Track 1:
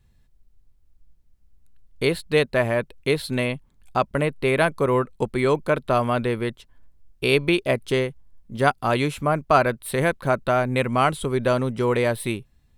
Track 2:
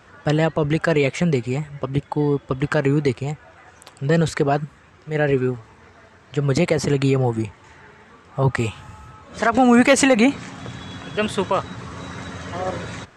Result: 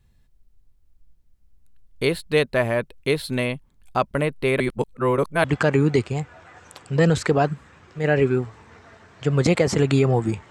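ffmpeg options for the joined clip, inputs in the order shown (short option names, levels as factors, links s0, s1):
-filter_complex "[0:a]apad=whole_dur=10.5,atrim=end=10.5,asplit=2[s0][s1];[s0]atrim=end=4.602[s2];[s1]atrim=start=4.598:end=5.442,asetpts=PTS-STARTPTS,areverse[s3];[1:a]atrim=start=2.548:end=7.61[s4];[s2][s3]acrossfade=d=0.004:c1=hsin:c2=hsin[s5];[s5][s4]acrossfade=d=0.004:c1=hsin:c2=hsin"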